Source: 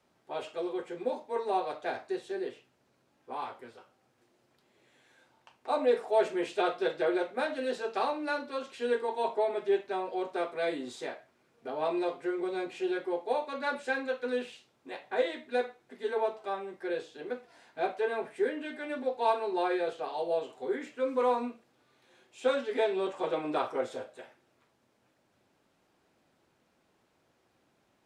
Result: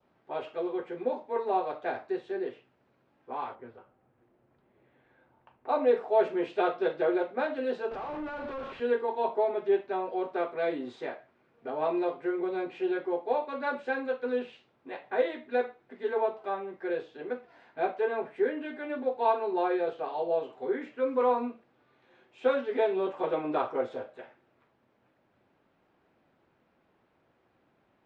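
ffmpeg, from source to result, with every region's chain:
ffmpeg -i in.wav -filter_complex "[0:a]asettb=1/sr,asplit=3[link_01][link_02][link_03];[link_01]atrim=end=3.554[link_04];[link_02]atrim=start=3.55:end=5.69,asetpts=PTS-STARTPTS,afade=type=in:duration=0.004:curve=qsin,afade=type=out:start_time=2.136:duration=0.004:curve=qsin,lowpass=frequency=1300:poles=1,lowshelf=frequency=94:gain=10.5[link_05];[link_03]atrim=start=5.686[link_06];[link_04][link_05]acrossfade=duration=0.004:curve1=hsin:curve2=qsin[link_07];[link_07][link_06]acrossfade=duration=0.004:curve1=qsin:curve2=hsin,asettb=1/sr,asplit=3[link_08][link_09][link_10];[link_08]atrim=end=7.914[link_11];[link_09]atrim=start=7.91:end=8.8,asetpts=PTS-STARTPTS,afade=type=in:duration=0.004:curve=qsin,afade=type=out:start_time=0.886:duration=0.004:curve=qsin,acompressor=threshold=-45dB:ratio=3:attack=3.2:release=140:knee=1:detection=peak,asplit=2[link_12][link_13];[link_13]highpass=frequency=720:poles=1,volume=37dB,asoftclip=type=tanh:threshold=-31dB[link_14];[link_12][link_14]amix=inputs=2:normalize=0,lowpass=frequency=1200:poles=1,volume=-6dB[link_15];[link_10]atrim=start=8.796[link_16];[link_11][link_15]acrossfade=duration=0.004:curve1=hsin:curve2=qsin[link_17];[link_17][link_16]acrossfade=duration=0.004:curve1=qsin:curve2=hsin,lowpass=2500,adynamicequalizer=threshold=0.00355:dfrequency=1900:dqfactor=1.7:tfrequency=1900:tqfactor=1.7:attack=5:release=100:ratio=0.375:range=2.5:mode=cutabove:tftype=bell,volume=2dB" out.wav

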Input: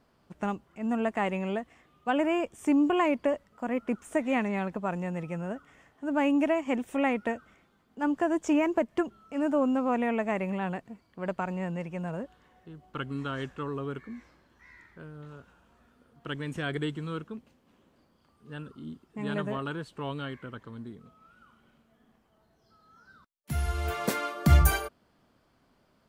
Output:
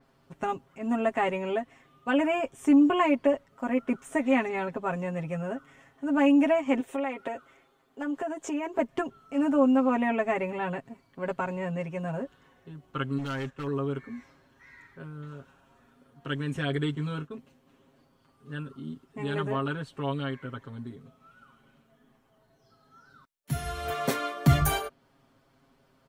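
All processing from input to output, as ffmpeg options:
ffmpeg -i in.wav -filter_complex "[0:a]asettb=1/sr,asplit=3[link_01][link_02][link_03];[link_01]atrim=end=6.804[link_04];[link_02]atrim=start=6.8:end=8.79,asetpts=PTS-STARTPTS,afade=type=in:duration=0.004:curve=qsin,afade=type=out:start_time=1.986:duration=0.004:curve=qsin,lowshelf=frequency=280:width_type=q:width=1.5:gain=-7,bandreject=frequency=5600:width=19,acompressor=threshold=-30dB:ratio=6:attack=3.2:release=140:knee=1:detection=peak[link_05];[link_03]atrim=start=8.786[link_06];[link_04][link_05]acrossfade=duration=0.004:curve1=hsin:curve2=qsin[link_07];[link_07][link_06]acrossfade=duration=0.004:curve1=qsin:curve2=hsin,asettb=1/sr,asplit=3[link_08][link_09][link_10];[link_08]atrim=end=13.184[link_11];[link_09]atrim=start=13.18:end=13.67,asetpts=PTS-STARTPTS,afade=type=in:duration=0.004:curve=qsin,afade=type=out:start_time=0.486:duration=0.004:curve=qsin,agate=range=-8dB:threshold=-44dB:ratio=16:release=100:detection=peak,asoftclip=type=hard:threshold=-34.5dB[link_12];[link_10]atrim=start=13.666[link_13];[link_11][link_12]acrossfade=duration=0.004:curve1=hsin:curve2=qsin[link_14];[link_14][link_13]acrossfade=duration=0.004:curve1=qsin:curve2=hsin,asettb=1/sr,asplit=3[link_15][link_16][link_17];[link_15]atrim=end=16.954[link_18];[link_16]atrim=start=16.95:end=17.35,asetpts=PTS-STARTPTS,afade=type=in:duration=0.004:curve=qsin,afade=type=out:start_time=0.396:duration=0.004:curve=qsin,agate=range=-33dB:threshold=-46dB:ratio=3:release=100:detection=peak,asplit=2[link_19][link_20];[link_20]adelay=20,volume=-11dB[link_21];[link_19][link_21]amix=inputs=2:normalize=0,atrim=end_sample=17640[link_22];[link_17]atrim=start=17.346[link_23];[link_18][link_22]acrossfade=duration=0.004:curve1=hsin:curve2=qsin[link_24];[link_24][link_23]acrossfade=duration=0.004:curve1=qsin:curve2=hsin,bandreject=frequency=4800:width=17,aecho=1:1:7.4:0.84,adynamicequalizer=threshold=0.00355:dfrequency=5500:dqfactor=0.7:tfrequency=5500:tqfactor=0.7:attack=5:release=100:ratio=0.375:range=2:mode=cutabove:tftype=highshelf" out.wav

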